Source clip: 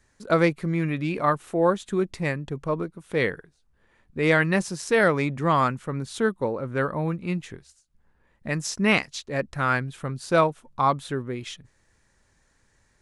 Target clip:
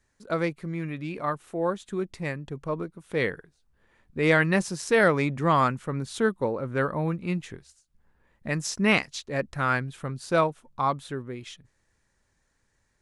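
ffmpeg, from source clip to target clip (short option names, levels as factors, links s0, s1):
-af "dynaudnorm=f=350:g=17:m=3.76,volume=0.447"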